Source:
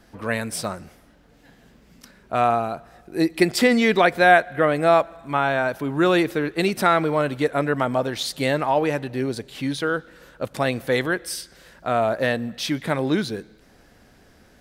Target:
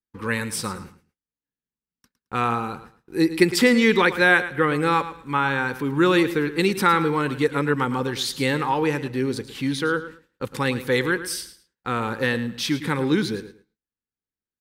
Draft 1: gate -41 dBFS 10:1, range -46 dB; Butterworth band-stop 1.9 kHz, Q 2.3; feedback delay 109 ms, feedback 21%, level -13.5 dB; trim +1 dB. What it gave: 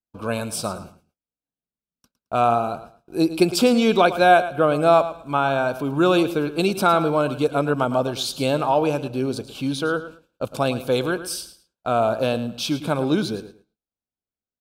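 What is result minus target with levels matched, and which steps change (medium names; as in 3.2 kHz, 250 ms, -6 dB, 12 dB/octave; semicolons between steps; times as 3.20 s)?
2 kHz band -6.5 dB
change: Butterworth band-stop 650 Hz, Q 2.3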